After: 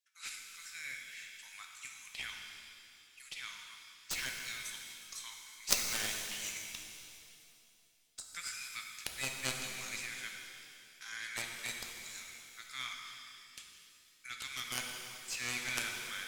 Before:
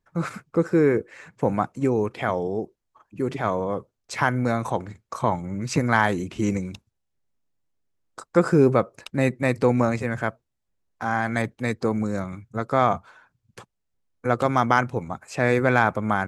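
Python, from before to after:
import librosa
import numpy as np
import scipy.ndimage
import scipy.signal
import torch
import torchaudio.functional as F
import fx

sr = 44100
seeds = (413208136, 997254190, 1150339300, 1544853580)

y = scipy.signal.sosfilt(scipy.signal.cheby2(4, 80, 440.0, 'highpass', fs=sr, output='sos'), x)
y = fx.cheby_harmonics(y, sr, harmonics=(2, 3), levels_db=(-15, -7), full_scale_db=-19.0)
y = fx.rev_shimmer(y, sr, seeds[0], rt60_s=2.5, semitones=7, shimmer_db=-8, drr_db=1.5)
y = F.gain(torch.from_numpy(y), 10.5).numpy()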